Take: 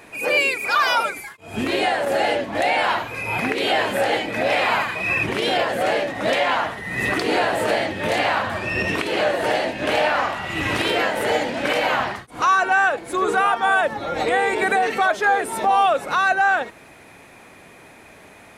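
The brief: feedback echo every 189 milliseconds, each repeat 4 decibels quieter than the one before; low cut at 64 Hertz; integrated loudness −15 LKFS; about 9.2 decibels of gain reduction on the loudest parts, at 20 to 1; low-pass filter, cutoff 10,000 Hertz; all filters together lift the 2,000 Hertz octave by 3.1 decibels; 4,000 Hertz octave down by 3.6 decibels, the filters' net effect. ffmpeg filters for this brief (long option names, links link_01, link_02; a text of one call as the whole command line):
ffmpeg -i in.wav -af "highpass=64,lowpass=10000,equalizer=frequency=2000:width_type=o:gain=6,equalizer=frequency=4000:width_type=o:gain=-8.5,acompressor=threshold=-21dB:ratio=20,aecho=1:1:189|378|567|756|945|1134|1323|1512|1701:0.631|0.398|0.25|0.158|0.0994|0.0626|0.0394|0.0249|0.0157,volume=8dB" out.wav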